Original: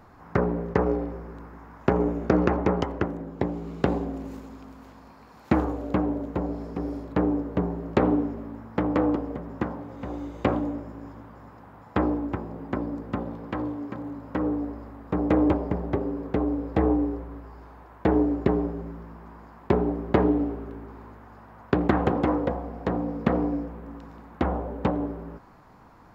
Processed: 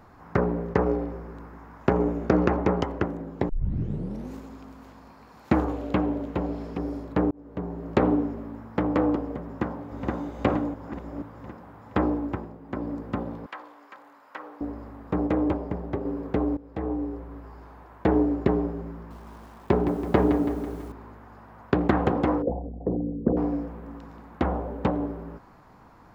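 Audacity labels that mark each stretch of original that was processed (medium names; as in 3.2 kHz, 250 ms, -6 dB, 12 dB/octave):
3.490000	3.490000	tape start 0.84 s
5.680000	6.780000	peaking EQ 3 kHz +7 dB 1.2 oct
7.310000	7.950000	fade in
9.440000	10.080000	echo throw 470 ms, feedback 60%, level -1.5 dB
10.740000	11.220000	reverse
12.310000	12.900000	dip -8.5 dB, fades 0.28 s
13.460000	14.610000	high-pass 1.1 kHz
15.270000	16.050000	gain -3.5 dB
16.570000	17.480000	fade in linear, from -17.5 dB
18.940000	20.920000	bit-crushed delay 165 ms, feedback 55%, word length 8-bit, level -9 dB
22.420000	23.370000	resonances exaggerated exponent 3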